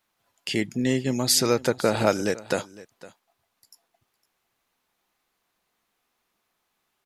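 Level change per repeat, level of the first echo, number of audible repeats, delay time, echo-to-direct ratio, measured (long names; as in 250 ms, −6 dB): repeats not evenly spaced, −19.5 dB, 1, 508 ms, −19.5 dB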